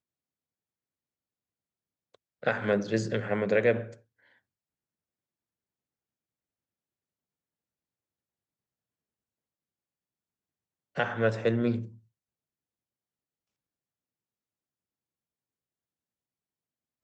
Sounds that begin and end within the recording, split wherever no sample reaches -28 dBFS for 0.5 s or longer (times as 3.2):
2.47–3.81
10.97–11.8